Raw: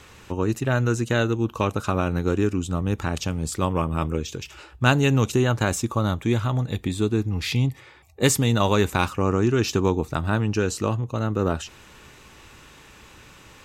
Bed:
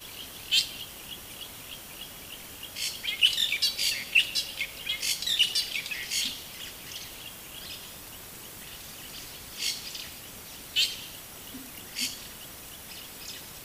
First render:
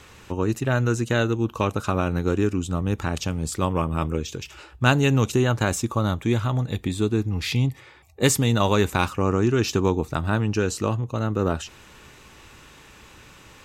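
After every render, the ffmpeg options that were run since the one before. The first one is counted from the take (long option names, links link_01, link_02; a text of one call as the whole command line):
ffmpeg -i in.wav -af anull out.wav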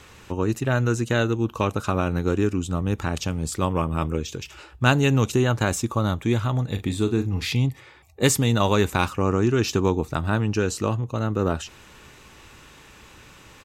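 ffmpeg -i in.wav -filter_complex "[0:a]asplit=3[link_01][link_02][link_03];[link_01]afade=type=out:start_time=6.75:duration=0.02[link_04];[link_02]asplit=2[link_05][link_06];[link_06]adelay=41,volume=-10.5dB[link_07];[link_05][link_07]amix=inputs=2:normalize=0,afade=type=in:start_time=6.75:duration=0.02,afade=type=out:start_time=7.45:duration=0.02[link_08];[link_03]afade=type=in:start_time=7.45:duration=0.02[link_09];[link_04][link_08][link_09]amix=inputs=3:normalize=0" out.wav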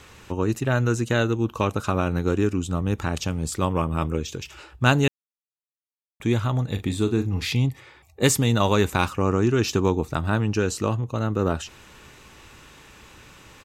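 ffmpeg -i in.wav -filter_complex "[0:a]asplit=3[link_01][link_02][link_03];[link_01]atrim=end=5.08,asetpts=PTS-STARTPTS,afade=type=out:start_time=5.076:duration=0.004:curve=hsin[link_04];[link_02]atrim=start=5.08:end=6.2,asetpts=PTS-STARTPTS,volume=0[link_05];[link_03]atrim=start=6.2,asetpts=PTS-STARTPTS,afade=type=in:duration=0.004:curve=hsin[link_06];[link_04][link_05][link_06]concat=n=3:v=0:a=1" out.wav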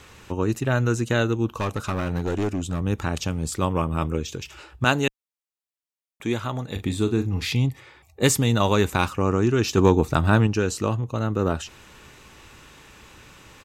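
ffmpeg -i in.wav -filter_complex "[0:a]asettb=1/sr,asplit=3[link_01][link_02][link_03];[link_01]atrim=end=1.494[link_04];[link_02]atrim=start=1.49:end=2.8,asetpts=PTS-STARTPTS,afade=type=in:duration=0.004:curve=qsin,afade=type=out:start_time=1.306:duration=0.004:curve=qsin,asoftclip=type=hard:threshold=-20.5dB[link_05];[link_03]atrim=start=2.796[link_06];[link_04][link_05]acrossfade=duration=0.004:curve1=hsin:curve2=qsin[link_07];[link_07][link_06]acrossfade=duration=0.004:curve1=qsin:curve2=hsin,asettb=1/sr,asplit=3[link_08][link_09][link_10];[link_08]atrim=end=4.844[link_11];[link_09]atrim=start=4.84:end=6.76,asetpts=PTS-STARTPTS,afade=type=in:duration=0.004:curve=qsin,afade=type=out:start_time=1.916:duration=0.004:curve=qsin,equalizer=frequency=62:width_type=o:width=2.3:gain=-13.5[link_12];[link_10]atrim=start=6.756[link_13];[link_11][link_12]acrossfade=duration=0.004:curve1=hsin:curve2=qsin[link_14];[link_14][link_13]acrossfade=duration=0.004:curve1=qsin:curve2=hsin,asettb=1/sr,asplit=3[link_15][link_16][link_17];[link_15]atrim=end=9.774[link_18];[link_16]atrim=start=9.77:end=10.47,asetpts=PTS-STARTPTS,afade=type=in:duration=0.004:curve=qsin,afade=type=out:start_time=0.696:duration=0.004:curve=qsin,acontrast=34[link_19];[link_17]atrim=start=10.466[link_20];[link_18][link_19]acrossfade=duration=0.004:curve1=hsin:curve2=qsin[link_21];[link_21][link_20]acrossfade=duration=0.004:curve1=qsin:curve2=hsin" out.wav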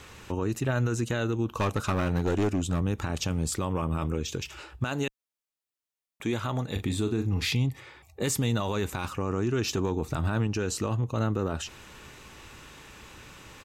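ffmpeg -i in.wav -af "acompressor=threshold=-21dB:ratio=10,alimiter=limit=-18.5dB:level=0:latency=1:release=11" out.wav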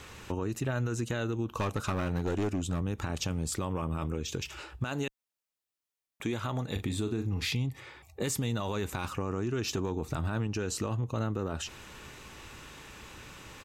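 ffmpeg -i in.wav -af "acompressor=threshold=-30dB:ratio=2.5" out.wav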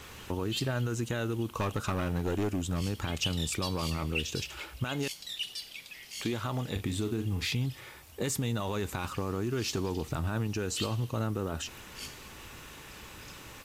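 ffmpeg -i in.wav -i bed.wav -filter_complex "[1:a]volume=-12.5dB[link_01];[0:a][link_01]amix=inputs=2:normalize=0" out.wav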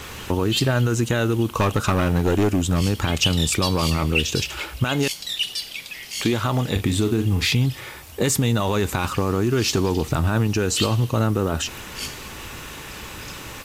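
ffmpeg -i in.wav -af "volume=11.5dB" out.wav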